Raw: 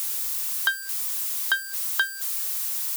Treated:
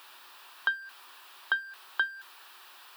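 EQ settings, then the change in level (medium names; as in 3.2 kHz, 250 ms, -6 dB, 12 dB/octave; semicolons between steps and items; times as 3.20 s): distance through air 440 m; peaking EQ 2.1 kHz -12 dB 0.2 oct; 0.0 dB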